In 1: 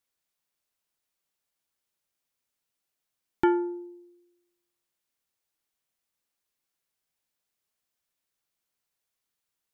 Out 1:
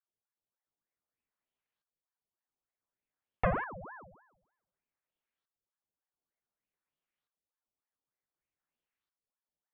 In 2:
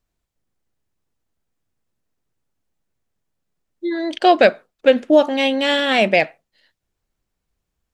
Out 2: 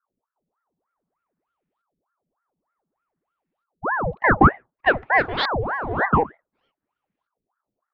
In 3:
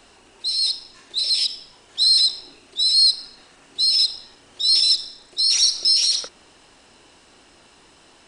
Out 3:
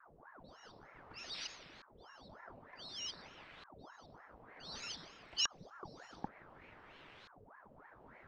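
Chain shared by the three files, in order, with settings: LFO low-pass saw up 0.55 Hz 220–2700 Hz; ring modulator with a swept carrier 780 Hz, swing 80%, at 3.3 Hz; gain -4 dB

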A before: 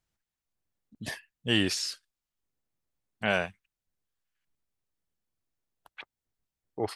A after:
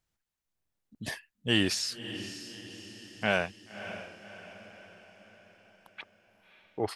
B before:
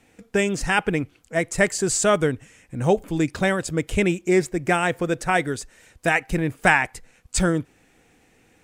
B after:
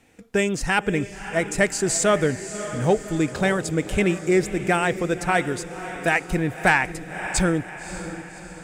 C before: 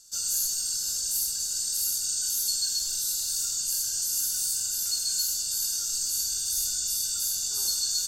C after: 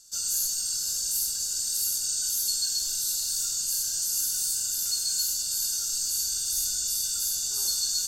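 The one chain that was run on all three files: diffused feedback echo 0.583 s, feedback 51%, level -12 dB; soft clip -5.5 dBFS

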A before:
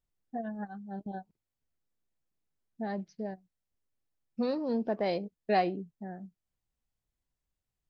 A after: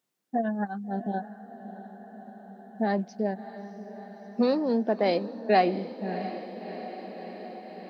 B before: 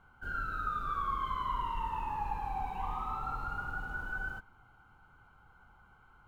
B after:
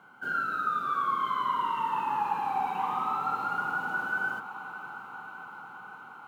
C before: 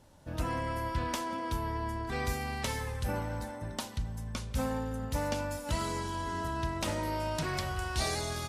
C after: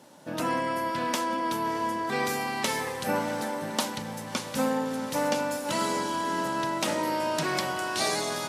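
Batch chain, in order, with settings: HPF 180 Hz 24 dB/oct; in parallel at +2 dB: vocal rider within 4 dB 0.5 s; on the sum: diffused feedback echo 0.661 s, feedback 73%, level -13 dB

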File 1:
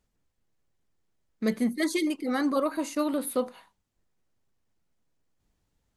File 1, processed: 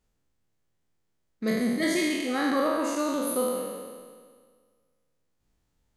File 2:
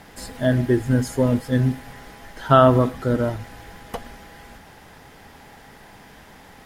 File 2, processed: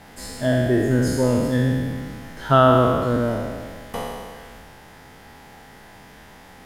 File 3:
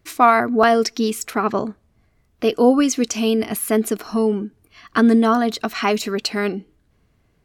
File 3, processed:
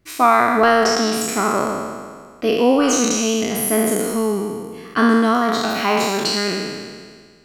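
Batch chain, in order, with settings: spectral trails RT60 1.76 s; gain -2.5 dB

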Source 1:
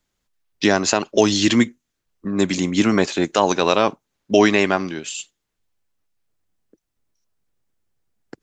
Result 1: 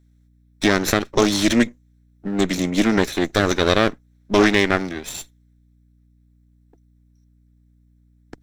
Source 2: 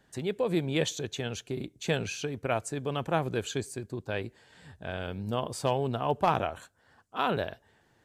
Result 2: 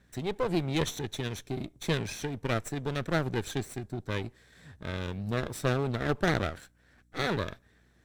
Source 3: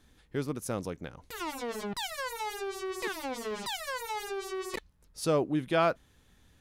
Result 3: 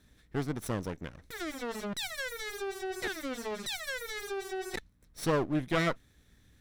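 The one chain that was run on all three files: minimum comb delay 0.52 ms; hum 60 Hz, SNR 34 dB; Doppler distortion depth 0.13 ms

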